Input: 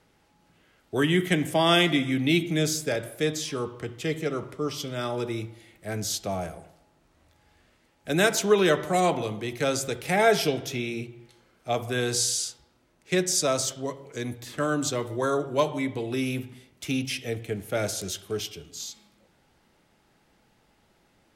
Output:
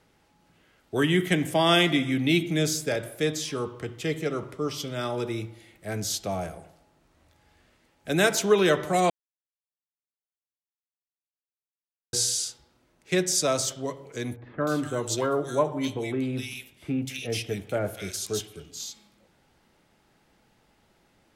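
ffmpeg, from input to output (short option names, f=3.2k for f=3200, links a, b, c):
-filter_complex "[0:a]asettb=1/sr,asplit=3[a][b][c];[a]atrim=end=14.364[d];[b]atrim=start=14.36:end=18.6,asetpts=PTS-STARTPTS,afade=t=in:d=0.004:c=qsin,afade=t=out:st=4.236:d=0.004:c=qsin,acrossover=split=1900[e][f];[f]adelay=250[g];[e][g]amix=inputs=2:normalize=0,atrim=end_sample=186984[h];[c]atrim=start=18.596[i];[d][h]acrossfade=d=0.004:c1=hsin:c2=qsin[j];[j][i]acrossfade=d=0.004:c1=qsin:c2=hsin,asplit=3[k][l][m];[k]atrim=end=9.1,asetpts=PTS-STARTPTS,afade=t=out:st=9.096:d=0.004:c=hsin[n];[l]atrim=start=9.1:end=12.13,asetpts=PTS-STARTPTS,volume=0[o];[m]atrim=start=12.13,asetpts=PTS-STARTPTS,afade=t=in:d=0.004:c=hsin[p];[n][o][p]concat=n=3:v=0:a=1"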